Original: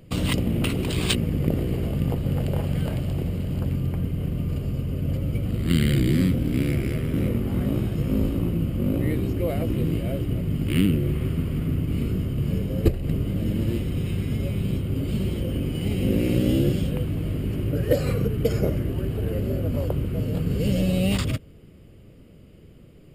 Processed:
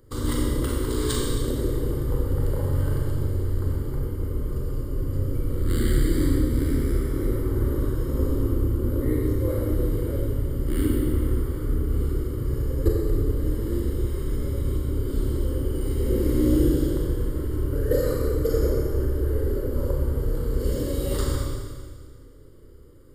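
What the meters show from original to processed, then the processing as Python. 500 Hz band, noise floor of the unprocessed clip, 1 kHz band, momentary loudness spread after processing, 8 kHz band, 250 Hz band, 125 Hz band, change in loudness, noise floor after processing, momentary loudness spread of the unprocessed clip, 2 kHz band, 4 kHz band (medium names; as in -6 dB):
+1.5 dB, -48 dBFS, 0.0 dB, 5 LU, +2.0 dB, -3.0 dB, -2.5 dB, -1.0 dB, -42 dBFS, 5 LU, -5.5 dB, -6.0 dB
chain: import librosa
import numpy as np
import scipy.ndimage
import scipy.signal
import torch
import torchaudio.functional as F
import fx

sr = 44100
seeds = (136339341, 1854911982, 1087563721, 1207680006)

y = fx.octave_divider(x, sr, octaves=2, level_db=-4.0)
y = fx.fixed_phaser(y, sr, hz=690.0, stages=6)
y = fx.rev_schroeder(y, sr, rt60_s=1.8, comb_ms=29, drr_db=-3.0)
y = y * librosa.db_to_amplitude(-2.0)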